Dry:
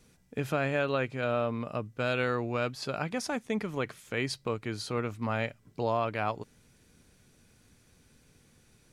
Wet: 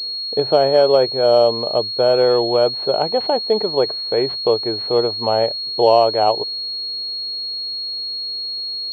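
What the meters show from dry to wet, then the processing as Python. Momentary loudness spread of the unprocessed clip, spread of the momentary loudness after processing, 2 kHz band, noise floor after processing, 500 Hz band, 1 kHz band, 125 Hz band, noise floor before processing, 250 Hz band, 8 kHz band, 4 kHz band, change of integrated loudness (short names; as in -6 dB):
7 LU, 9 LU, -1.0 dB, -26 dBFS, +18.0 dB, +14.5 dB, +2.0 dB, -64 dBFS, +7.5 dB, n/a, +24.5 dB, +14.5 dB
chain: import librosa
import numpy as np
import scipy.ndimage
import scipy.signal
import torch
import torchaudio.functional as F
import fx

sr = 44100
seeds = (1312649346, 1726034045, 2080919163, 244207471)

y = fx.mod_noise(x, sr, seeds[0], snr_db=30)
y = fx.band_shelf(y, sr, hz=570.0, db=16.0, octaves=1.7)
y = fx.pwm(y, sr, carrier_hz=4300.0)
y = y * librosa.db_to_amplitude(2.0)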